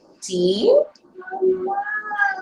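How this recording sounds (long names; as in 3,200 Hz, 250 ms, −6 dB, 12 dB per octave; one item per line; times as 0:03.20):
phaser sweep stages 2, 3 Hz, lowest notch 420–2,300 Hz
Opus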